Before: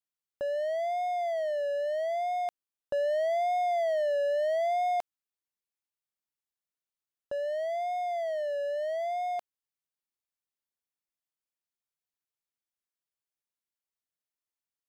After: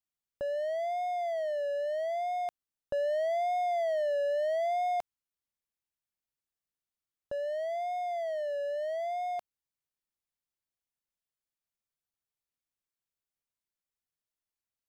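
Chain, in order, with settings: low shelf 160 Hz +9.5 dB; gain -2.5 dB

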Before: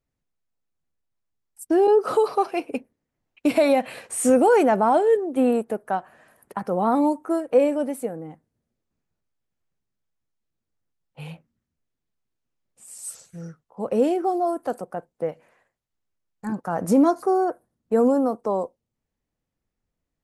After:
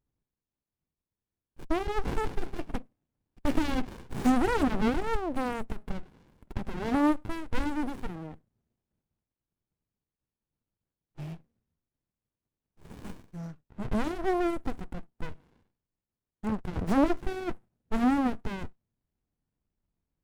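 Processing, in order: running maximum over 65 samples

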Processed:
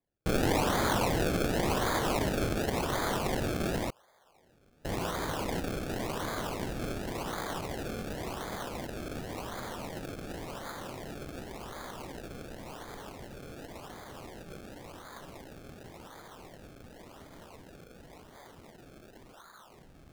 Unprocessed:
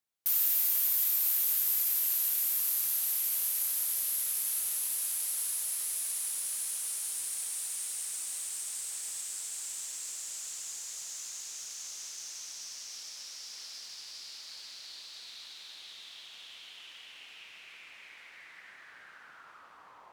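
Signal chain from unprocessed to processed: 3.9–4.85 Butterworth band-pass 680 Hz, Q 1.2; decimation with a swept rate 31×, swing 100% 0.91 Hz

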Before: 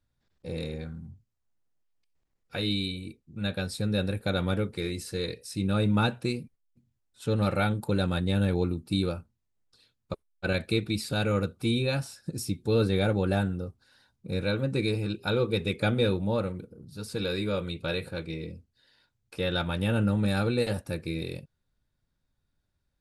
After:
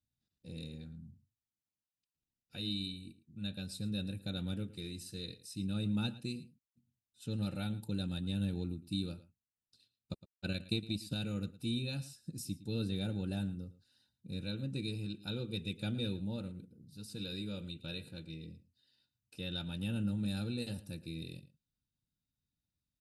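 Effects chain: band shelf 890 Hz -12 dB 2.8 oct; 9.11–11.17 transient shaper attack +5 dB, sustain -6 dB; notch comb 1100 Hz; outdoor echo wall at 19 m, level -17 dB; gain -7 dB

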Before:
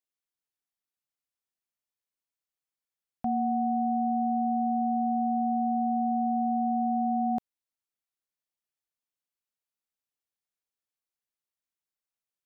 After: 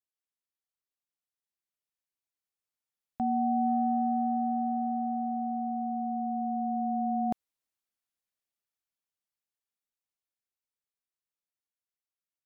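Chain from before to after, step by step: Doppler pass-by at 5.8, 5 m/s, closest 6.4 m; negative-ratio compressor -33 dBFS, ratio -1; gain +3 dB

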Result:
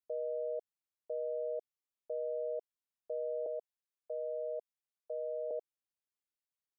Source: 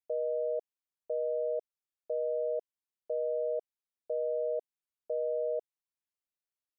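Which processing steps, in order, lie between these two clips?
3.46–5.51 HPF 460 Hz 24 dB/oct; gain -5 dB

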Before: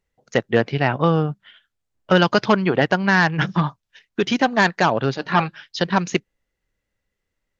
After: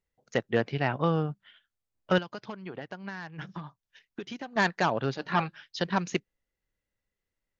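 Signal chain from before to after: 2.18–4.56 compressor 12:1, threshold -27 dBFS, peak gain reduction 17.5 dB; gain -8.5 dB

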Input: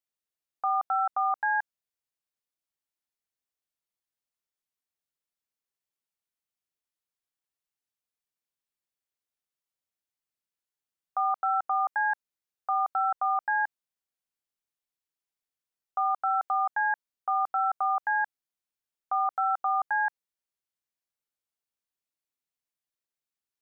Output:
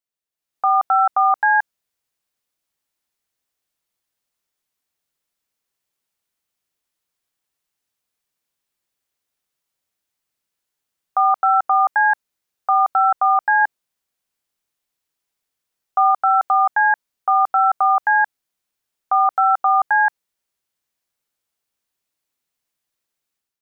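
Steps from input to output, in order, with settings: 13.61–16.11 dynamic EQ 460 Hz, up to +4 dB, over -44 dBFS, Q 1.2; AGC gain up to 11 dB

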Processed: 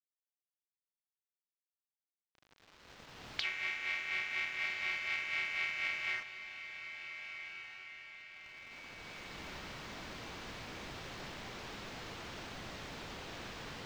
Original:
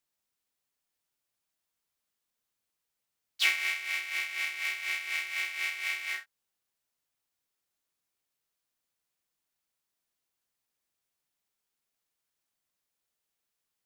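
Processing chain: recorder AGC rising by 8.2 dB/s; low shelf 420 Hz +6 dB; compressor 5:1, threshold -48 dBFS, peak gain reduction 24 dB; bit-crush 9-bit; air absorption 200 m; on a send: diffused feedback echo 1.499 s, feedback 51%, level -10 dB; on the sum: gain +14 dB

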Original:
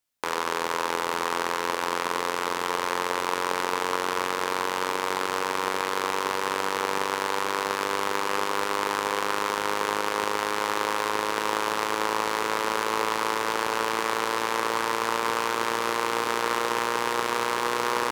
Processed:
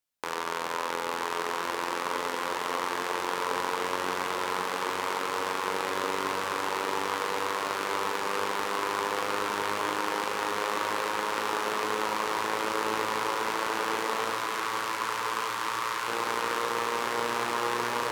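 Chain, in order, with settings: 14.3–16.08 Chebyshev band-stop 130–1000 Hz, order 3; diffused feedback echo 1.131 s, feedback 72%, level -8 dB; spring tank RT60 3.9 s, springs 42/49/55 ms, chirp 20 ms, DRR 6 dB; gain -5 dB

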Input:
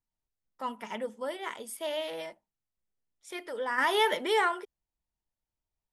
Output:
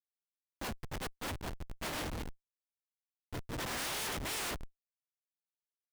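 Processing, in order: spectral contrast lowered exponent 0.15; Schmitt trigger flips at -31 dBFS; limiter -39 dBFS, peak gain reduction 10 dB; gain +2 dB

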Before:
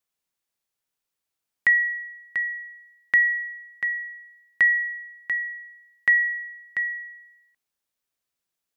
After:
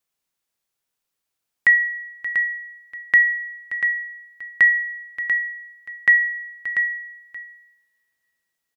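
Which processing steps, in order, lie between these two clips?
on a send: echo 0.578 s -14 dB; on the sum: two-slope reverb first 0.6 s, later 3.5 s, from -26 dB, DRR 13 dB; gain +3 dB

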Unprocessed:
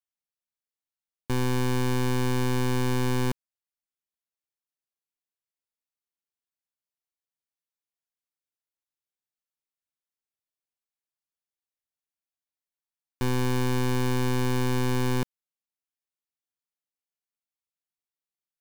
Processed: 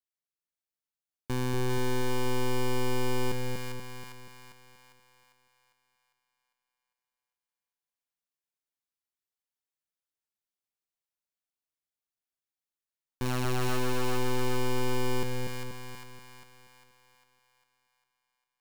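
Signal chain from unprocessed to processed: 13.25–13.77 sample sorter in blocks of 32 samples; on a send: split-band echo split 780 Hz, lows 0.24 s, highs 0.401 s, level -3 dB; on the sum: gain -4.5 dB

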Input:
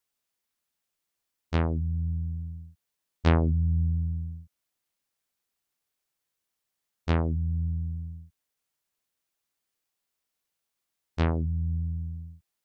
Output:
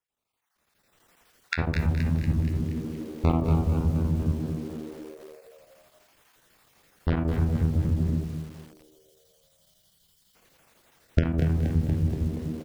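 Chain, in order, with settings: random spectral dropouts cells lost 25%; recorder AGC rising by 29 dB/s; high shelf 2800 Hz -11.5 dB; reverb RT60 0.35 s, pre-delay 41 ms, DRR 6 dB; chopper 12 Hz, depth 60%, duty 85%; 11.24–12.05 bell 910 Hz -4.5 dB 1.9 oct; frequency-shifting echo 0.237 s, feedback 57%, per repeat +76 Hz, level -8 dB; 8.24–10.35 spectral gain 200–2900 Hz -15 dB; lo-fi delay 0.21 s, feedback 35%, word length 7-bit, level -9 dB

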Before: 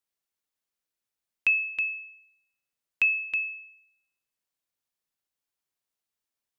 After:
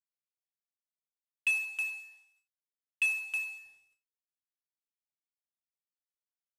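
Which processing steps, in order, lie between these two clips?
CVSD 64 kbps; gate with hold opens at -59 dBFS; 1.5–3.64 HPF 680 Hz 24 dB/oct; gain -5.5 dB

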